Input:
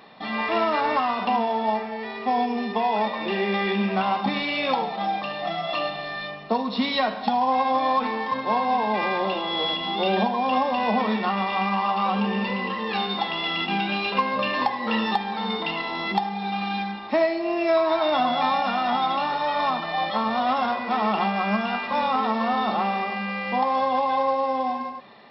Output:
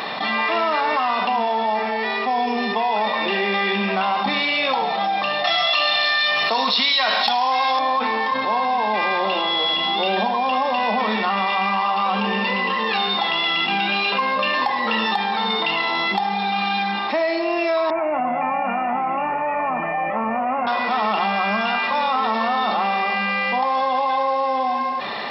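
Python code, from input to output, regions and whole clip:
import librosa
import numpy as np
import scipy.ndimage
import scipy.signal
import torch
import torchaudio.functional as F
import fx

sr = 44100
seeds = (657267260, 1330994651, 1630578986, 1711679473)

y = fx.chain(x, sr, fx.tilt_eq(slope=4.0),
    fx.env_flatten(amount_pct=70), at=(5.44, 7.79))
y = fx.chain(y, sr, fx.steep_lowpass(hz=2600.0, slope=96),
    fx.peak_eq(hz=1400.0, db=-10.5, octaves=1.8), at=(17.9, 20.67))
y = fx.low_shelf(y, sr, hz=420.0, db=-11.0)
y = fx.env_flatten(y, sr, amount_pct=70)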